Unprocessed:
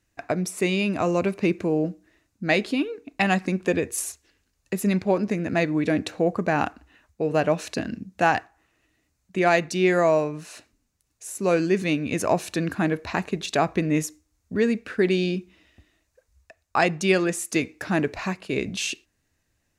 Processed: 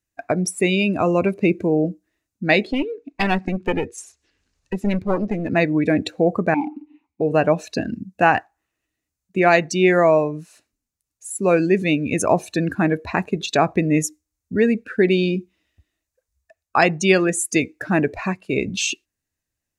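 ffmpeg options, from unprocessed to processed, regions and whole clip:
ffmpeg -i in.wav -filter_complex "[0:a]asettb=1/sr,asplit=3[link_01][link_02][link_03];[link_01]atrim=end=2.674[link_04];[link_02]atrim=start=2.67:end=5.5,asetpts=PTS-STARTPTS,afade=type=in:duration=0.004:curve=qsin,afade=type=out:start_time=2.826:duration=0.004:curve=qsin,lowpass=5500,acompressor=mode=upward:threshold=-44dB:ratio=2.5:attack=3.2:release=140:knee=2.83:detection=peak,aeval=exprs='clip(val(0),-1,0.0376)':channel_layout=same[link_05];[link_03]atrim=start=5.496[link_06];[link_04][link_05]acrossfade=duration=0.004:curve1=hsin:curve2=qsin[link_07];[link_07][link_06]acrossfade=duration=0.004:curve1=qsin:curve2=hsin,asettb=1/sr,asplit=3[link_08][link_09][link_10];[link_08]atrim=end=6.544[link_11];[link_09]atrim=start=6.54:end=7.21,asetpts=PTS-STARTPTS,afade=type=in:duration=0.004:curve=qsin,afade=type=out:start_time=0.666:duration=0.004:curve=qsin,acompressor=threshold=-35dB:ratio=2:attack=3.2:release=140:knee=1:detection=peak,aeval=exprs='0.188*sin(PI/2*5.01*val(0)/0.188)':channel_layout=same,asplit=3[link_12][link_13][link_14];[link_12]bandpass=frequency=300:width_type=q:width=8,volume=0dB[link_15];[link_13]bandpass=frequency=870:width_type=q:width=8,volume=-6dB[link_16];[link_14]bandpass=frequency=2240:width_type=q:width=8,volume=-9dB[link_17];[link_15][link_16][link_17]amix=inputs=3:normalize=0[link_18];[link_10]atrim=start=7.206[link_19];[link_11][link_18]acrossfade=duration=0.004:curve1=hsin:curve2=qsin[link_20];[link_20][link_19]acrossfade=duration=0.004:curve1=qsin:curve2=hsin,afftdn=noise_reduction=17:noise_floor=-33,highshelf=frequency=6900:gain=9.5,volume=4.5dB" out.wav

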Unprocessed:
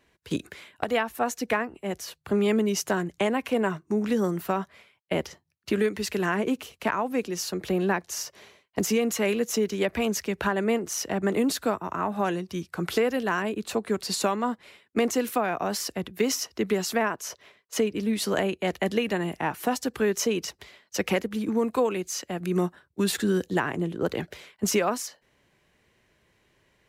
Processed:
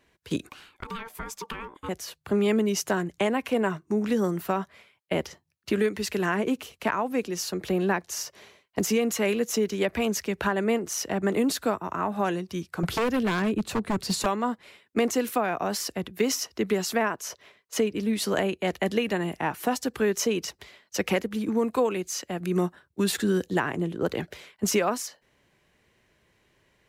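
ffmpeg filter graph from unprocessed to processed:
ffmpeg -i in.wav -filter_complex "[0:a]asettb=1/sr,asplit=3[link_01][link_02][link_03];[link_01]atrim=end=0.494[link_04];[link_02]atrim=start=0.49:end=1.89,asetpts=PTS-STARTPTS,afade=type=in:duration=0.004:curve=qsin,afade=type=out:start_time=1.396:duration=0.004:curve=qsin,acompressor=threshold=-28dB:ratio=10:attack=3.2:release=140:knee=1:detection=peak,aeval=exprs='val(0)*sin(2*PI*680*n/s)':channel_layout=same[link_05];[link_03]atrim=start=1.886[link_06];[link_04][link_05]acrossfade=duration=0.004:curve1=hsin:curve2=qsin[link_07];[link_07][link_06]acrossfade=duration=0.004:curve1=qsin:curve2=hsin,asettb=1/sr,asplit=3[link_08][link_09][link_10];[link_08]atrim=end=12.834[link_11];[link_09]atrim=start=12.83:end=14.26,asetpts=PTS-STARTPTS,afade=type=in:duration=0.004:curve=qsin,afade=type=out:start_time=1.426:duration=0.004:curve=qsin,bass=frequency=250:gain=11,treble=frequency=4000:gain=-1,aeval=exprs='0.112*(abs(mod(val(0)/0.112+3,4)-2)-1)':channel_layout=same[link_12];[link_10]atrim=start=14.256[link_13];[link_11][link_12]acrossfade=duration=0.004:curve1=hsin:curve2=qsin[link_14];[link_14][link_13]acrossfade=duration=0.004:curve1=qsin:curve2=hsin" out.wav

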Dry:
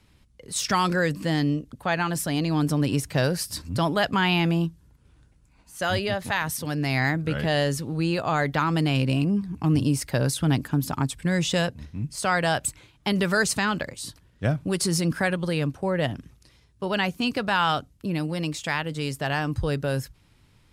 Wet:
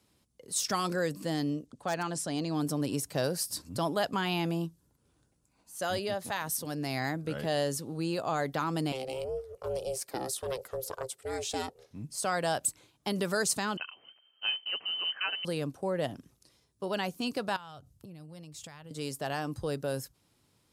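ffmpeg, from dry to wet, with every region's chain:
ffmpeg -i in.wav -filter_complex "[0:a]asettb=1/sr,asplit=3[link_01][link_02][link_03];[link_01]atrim=end=1.664[link_04];[link_02]atrim=start=1.66:end=2.55,asetpts=PTS-STARTPTS,afade=type=in:duration=0.004:curve=qsin,afade=type=out:start_time=0.886:duration=0.004:curve=qsin,lowpass=frequency=9000:width=0.5412,lowpass=frequency=9000:width=1.3066,aeval=exprs='0.168*(abs(mod(val(0)/0.168+3,4)-2)-1)':channel_layout=same[link_05];[link_03]atrim=start=2.546[link_06];[link_04][link_05]acrossfade=duration=0.004:curve1=hsin:curve2=qsin[link_07];[link_07][link_06]acrossfade=duration=0.004:curve1=qsin:curve2=hsin,asettb=1/sr,asplit=3[link_08][link_09][link_10];[link_08]atrim=end=8.924[link_11];[link_09]atrim=start=8.92:end=11.91,asetpts=PTS-STARTPTS,afade=type=in:duration=0.004:curve=qsin,afade=type=out:start_time=2.986:duration=0.004:curve=qsin,highpass=frequency=170:width=0.5412,highpass=frequency=170:width=1.3066,aeval=exprs='val(0)*sin(2*PI*260*n/s)':channel_layout=same[link_12];[link_10]atrim=start=11.906[link_13];[link_11][link_12]acrossfade=duration=0.004:curve1=hsin:curve2=qsin[link_14];[link_14][link_13]acrossfade=duration=0.004:curve1=qsin:curve2=hsin,asettb=1/sr,asplit=3[link_15][link_16][link_17];[link_15]atrim=end=13.774[link_18];[link_16]atrim=start=13.77:end=15.45,asetpts=PTS-STARTPTS,afade=type=in:duration=0.004:curve=qsin,afade=type=out:start_time=1.676:duration=0.004:curve=qsin,equalizer=frequency=650:width=6.1:gain=7,acrusher=bits=4:mode=log:mix=0:aa=0.000001,lowpass=frequency=2700:width_type=q:width=0.5098,lowpass=frequency=2700:width_type=q:width=0.6013,lowpass=frequency=2700:width_type=q:width=0.9,lowpass=frequency=2700:width_type=q:width=2.563,afreqshift=-3200[link_19];[link_17]atrim=start=15.446[link_20];[link_18][link_19]acrossfade=duration=0.004:curve1=hsin:curve2=qsin[link_21];[link_21][link_20]acrossfade=duration=0.004:curve1=qsin:curve2=hsin,asettb=1/sr,asplit=3[link_22][link_23][link_24];[link_22]atrim=end=17.564[link_25];[link_23]atrim=start=17.56:end=18.91,asetpts=PTS-STARTPTS,afade=type=in:duration=0.004:curve=qsin,afade=type=out:start_time=1.346:duration=0.004:curve=qsin,lowshelf=frequency=170:width_type=q:width=1.5:gain=11,acompressor=threshold=-35dB:ratio=12:attack=3.2:release=140:knee=1:detection=peak[link_26];[link_24]atrim=start=18.906[link_27];[link_25][link_26]acrossfade=duration=0.004:curve1=hsin:curve2=qsin[link_28];[link_28][link_27]acrossfade=duration=0.004:curve1=qsin:curve2=hsin,highpass=frequency=510:poles=1,equalizer=frequency=2100:width=0.63:gain=-11.5,bandreject=frequency=910:width=26" out.wav

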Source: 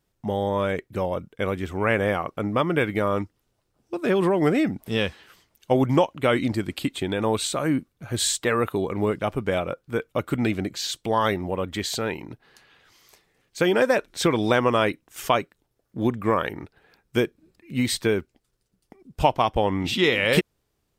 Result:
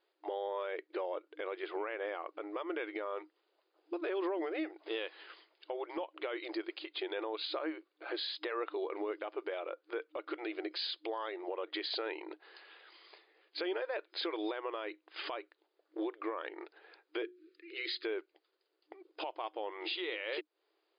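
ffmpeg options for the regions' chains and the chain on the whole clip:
ffmpeg -i in.wav -filter_complex "[0:a]asettb=1/sr,asplit=3[link_01][link_02][link_03];[link_01]atrim=end=17.224[link_04];[link_02]atrim=start=17.22:end=18.05,asetpts=PTS-STARTPTS,afade=type=in:duration=0.004:curve=qsin,afade=type=out:start_time=0.826:duration=0.004:curve=qsin,asuperstop=centerf=780:order=8:qfactor=1,bandreject=frequency=60:width_type=h:width=6,bandreject=frequency=120:width_type=h:width=6,bandreject=frequency=180:width_type=h:width=6,bandreject=frequency=240:width_type=h:width=6,bandreject=frequency=300:width_type=h:width=6,bandreject=frequency=360:width_type=h:width=6[link_05];[link_03]atrim=start=18.046[link_06];[link_04][link_05]acrossfade=duration=0.004:curve1=hsin:curve2=qsin[link_07];[link_07][link_06]acrossfade=duration=0.004:curve1=qsin:curve2=hsin,acompressor=threshold=-30dB:ratio=2.5,afftfilt=real='re*between(b*sr/4096,310,5000)':imag='im*between(b*sr/4096,310,5000)':win_size=4096:overlap=0.75,alimiter=level_in=4dB:limit=-24dB:level=0:latency=1:release=200,volume=-4dB" out.wav

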